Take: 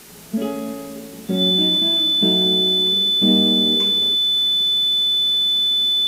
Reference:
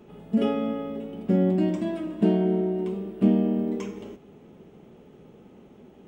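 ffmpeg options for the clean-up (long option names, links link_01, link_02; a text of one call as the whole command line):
ffmpeg -i in.wav -af "bandreject=frequency=3500:width=30,afwtdn=0.0079,asetnsamples=nb_out_samples=441:pad=0,asendcmd='3.28 volume volume -4dB',volume=0dB" out.wav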